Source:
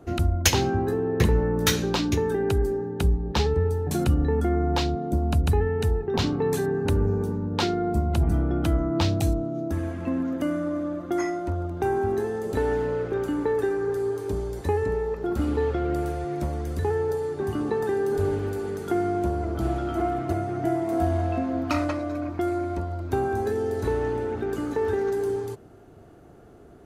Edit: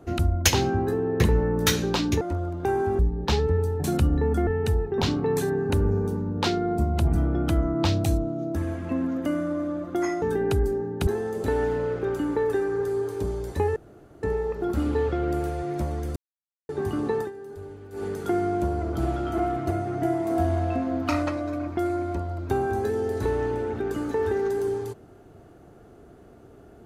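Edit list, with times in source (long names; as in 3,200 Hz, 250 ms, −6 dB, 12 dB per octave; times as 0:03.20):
0:02.21–0:03.06: swap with 0:11.38–0:12.16
0:04.54–0:05.63: remove
0:14.85: splice in room tone 0.47 s
0:16.78–0:17.31: silence
0:17.81–0:18.65: duck −15 dB, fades 0.12 s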